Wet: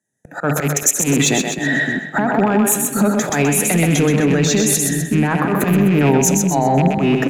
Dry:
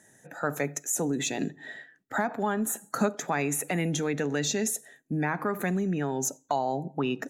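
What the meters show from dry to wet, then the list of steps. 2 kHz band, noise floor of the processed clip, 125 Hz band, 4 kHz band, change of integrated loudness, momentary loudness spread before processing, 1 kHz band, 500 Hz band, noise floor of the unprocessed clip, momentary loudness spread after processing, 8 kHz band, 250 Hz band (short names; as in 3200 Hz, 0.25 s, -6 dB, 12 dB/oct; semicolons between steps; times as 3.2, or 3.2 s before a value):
+13.5 dB, -35 dBFS, +16.5 dB, +13.0 dB, +14.0 dB, 7 LU, +11.0 dB, +12.5 dB, -63 dBFS, 5 LU, +14.5 dB, +15.0 dB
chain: rattling part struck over -33 dBFS, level -25 dBFS; gate with hold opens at -47 dBFS; bell 170 Hz +6 dB 2 oct; auto swell 0.271 s; compressor 6:1, threshold -38 dBFS, peak gain reduction 16.5 dB; soft clip -30 dBFS, distortion -23 dB; split-band echo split 340 Hz, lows 0.571 s, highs 0.128 s, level -4 dB; maximiser +32.5 dB; three-band expander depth 70%; gain -5.5 dB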